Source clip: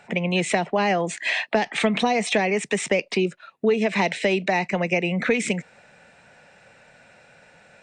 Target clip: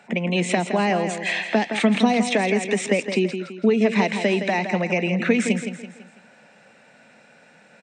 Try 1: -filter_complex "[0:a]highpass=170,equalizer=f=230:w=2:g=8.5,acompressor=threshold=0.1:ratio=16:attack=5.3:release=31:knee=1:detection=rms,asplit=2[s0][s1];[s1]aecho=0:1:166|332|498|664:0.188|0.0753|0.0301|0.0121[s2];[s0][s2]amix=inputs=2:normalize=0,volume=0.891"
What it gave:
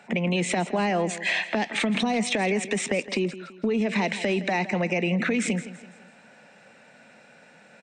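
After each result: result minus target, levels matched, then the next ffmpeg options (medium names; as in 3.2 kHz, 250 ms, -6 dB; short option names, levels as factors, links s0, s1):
compression: peak gain reduction +10 dB; echo-to-direct -6 dB
-filter_complex "[0:a]highpass=170,equalizer=f=230:w=2:g=8.5,asplit=2[s0][s1];[s1]aecho=0:1:166|332|498|664:0.188|0.0753|0.0301|0.0121[s2];[s0][s2]amix=inputs=2:normalize=0,volume=0.891"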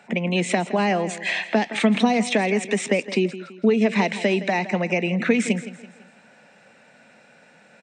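echo-to-direct -6 dB
-filter_complex "[0:a]highpass=170,equalizer=f=230:w=2:g=8.5,asplit=2[s0][s1];[s1]aecho=0:1:166|332|498|664:0.376|0.15|0.0601|0.0241[s2];[s0][s2]amix=inputs=2:normalize=0,volume=0.891"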